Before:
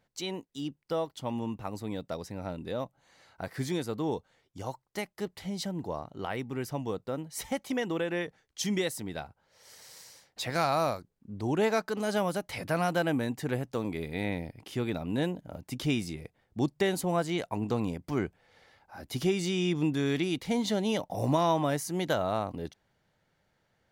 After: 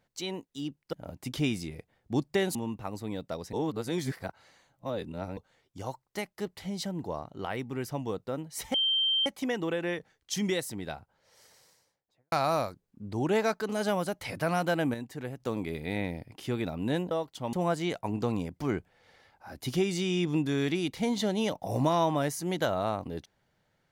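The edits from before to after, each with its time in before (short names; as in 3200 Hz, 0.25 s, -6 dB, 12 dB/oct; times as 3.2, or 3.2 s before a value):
0.93–1.35 swap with 15.39–17.01
2.33–4.17 reverse
7.54 add tone 3140 Hz -23.5 dBFS 0.52 s
9.24–10.6 studio fade out
13.22–13.68 gain -6.5 dB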